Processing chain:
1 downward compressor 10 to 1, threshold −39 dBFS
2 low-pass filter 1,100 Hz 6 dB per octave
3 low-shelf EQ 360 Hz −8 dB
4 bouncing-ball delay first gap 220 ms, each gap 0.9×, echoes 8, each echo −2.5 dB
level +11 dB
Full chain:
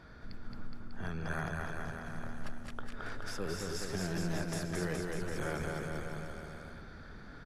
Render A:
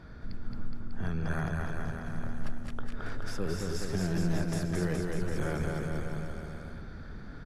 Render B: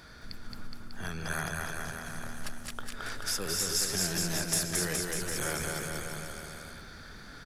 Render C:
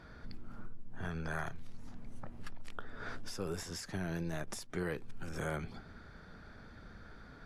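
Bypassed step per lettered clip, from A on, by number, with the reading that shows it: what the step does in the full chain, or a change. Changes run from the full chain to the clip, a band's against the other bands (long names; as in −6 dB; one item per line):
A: 3, 125 Hz band +6.0 dB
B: 2, 8 kHz band +14.5 dB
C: 4, change in momentary loudness spread +2 LU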